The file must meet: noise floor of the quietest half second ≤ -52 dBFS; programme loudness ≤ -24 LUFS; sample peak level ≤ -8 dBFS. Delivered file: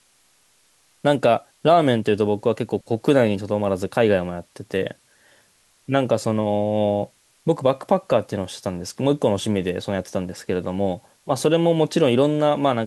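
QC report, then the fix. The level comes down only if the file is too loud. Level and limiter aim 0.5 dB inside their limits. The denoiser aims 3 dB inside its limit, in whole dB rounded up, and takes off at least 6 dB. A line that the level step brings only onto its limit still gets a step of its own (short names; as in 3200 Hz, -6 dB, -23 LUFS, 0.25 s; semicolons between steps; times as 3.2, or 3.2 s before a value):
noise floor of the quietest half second -60 dBFS: OK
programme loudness -21.5 LUFS: fail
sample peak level -4.5 dBFS: fail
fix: gain -3 dB; limiter -8.5 dBFS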